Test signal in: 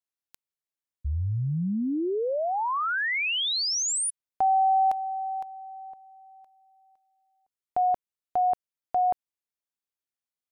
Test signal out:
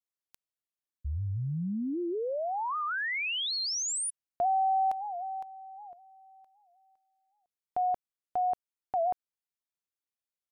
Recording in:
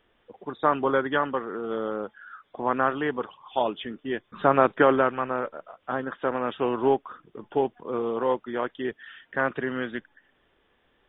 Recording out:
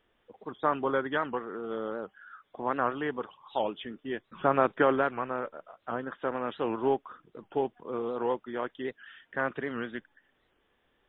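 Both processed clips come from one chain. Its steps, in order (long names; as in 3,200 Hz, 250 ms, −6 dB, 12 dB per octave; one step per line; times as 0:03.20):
wow of a warped record 78 rpm, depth 160 cents
level −5 dB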